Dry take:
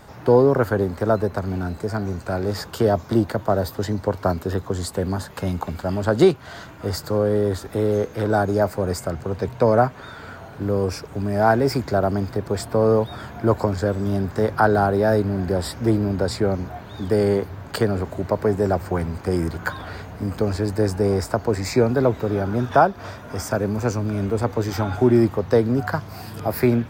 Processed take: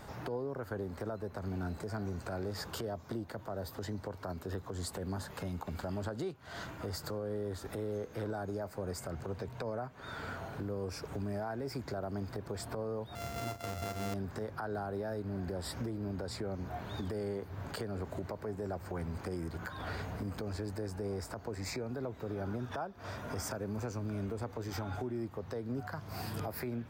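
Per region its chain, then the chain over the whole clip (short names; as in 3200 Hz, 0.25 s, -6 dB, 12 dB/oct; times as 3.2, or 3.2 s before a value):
13.15–14.14 sample sorter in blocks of 64 samples + doubler 35 ms -12.5 dB
whole clip: compressor 12:1, threshold -29 dBFS; limiter -25 dBFS; gain -4 dB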